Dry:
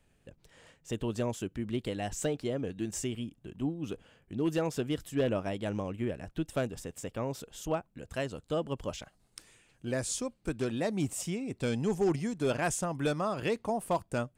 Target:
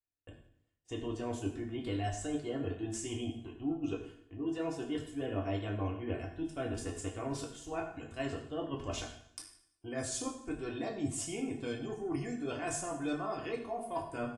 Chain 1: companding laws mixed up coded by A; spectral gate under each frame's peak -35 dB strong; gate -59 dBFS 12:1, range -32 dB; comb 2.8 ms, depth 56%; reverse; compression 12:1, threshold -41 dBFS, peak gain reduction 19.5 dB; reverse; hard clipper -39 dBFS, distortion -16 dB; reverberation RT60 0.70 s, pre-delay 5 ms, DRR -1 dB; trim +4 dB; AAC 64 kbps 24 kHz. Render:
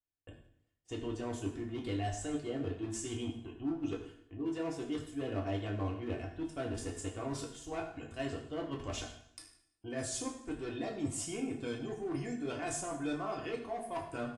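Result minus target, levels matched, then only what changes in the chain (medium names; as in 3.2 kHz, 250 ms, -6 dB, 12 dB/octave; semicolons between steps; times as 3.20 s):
hard clipper: distortion +27 dB
change: hard clipper -30.5 dBFS, distortion -44 dB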